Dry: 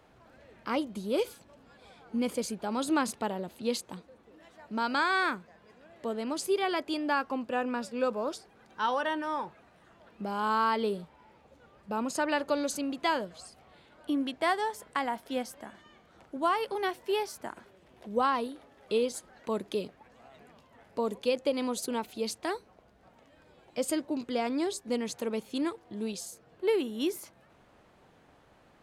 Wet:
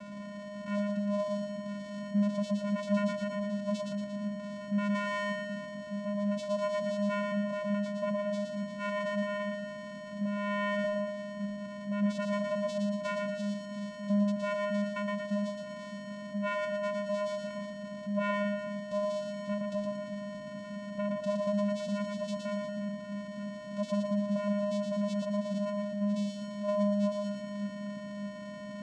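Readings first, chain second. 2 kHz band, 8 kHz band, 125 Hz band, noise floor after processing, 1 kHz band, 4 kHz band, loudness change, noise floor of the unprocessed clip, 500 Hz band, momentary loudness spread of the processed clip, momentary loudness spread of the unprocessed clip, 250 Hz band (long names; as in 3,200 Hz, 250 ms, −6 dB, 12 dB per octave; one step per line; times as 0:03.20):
−3.5 dB, −11.0 dB, +12.5 dB, −43 dBFS, −8.0 dB, −6.0 dB, −2.0 dB, −61 dBFS, 0.0 dB, 9 LU, 13 LU, +3.0 dB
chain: converter with a step at zero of −33 dBFS
channel vocoder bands 4, square 204 Hz
echo with a time of its own for lows and highs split 320 Hz, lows 604 ms, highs 116 ms, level −3.5 dB
level −3 dB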